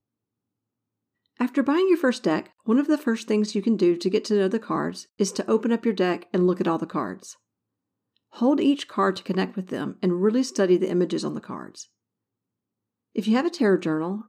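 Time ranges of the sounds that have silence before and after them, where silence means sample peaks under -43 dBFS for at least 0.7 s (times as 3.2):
1.39–7.33
8.33–11.83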